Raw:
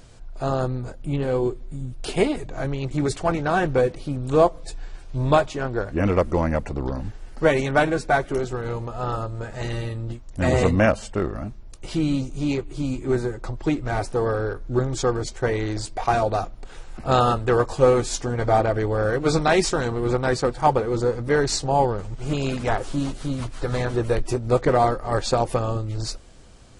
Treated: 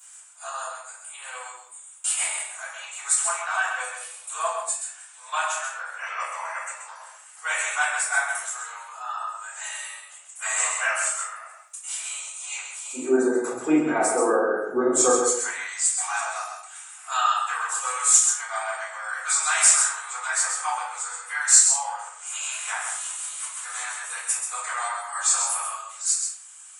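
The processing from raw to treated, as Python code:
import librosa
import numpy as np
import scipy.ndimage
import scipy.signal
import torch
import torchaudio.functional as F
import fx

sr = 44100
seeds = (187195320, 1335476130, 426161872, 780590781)

y = fx.bessel_highpass(x, sr, hz=fx.steps((0.0, 1500.0), (12.93, 370.0), (15.1, 1600.0)), order=8)
y = fx.spec_gate(y, sr, threshold_db=-30, keep='strong')
y = fx.high_shelf_res(y, sr, hz=6100.0, db=10.0, q=3.0)
y = y + 10.0 ** (-6.0 / 20.0) * np.pad(y, (int(131 * sr / 1000.0), 0))[:len(y)]
y = fx.room_shoebox(y, sr, seeds[0], volume_m3=81.0, walls='mixed', distance_m=3.8)
y = F.gain(torch.from_numpy(y), -9.5).numpy()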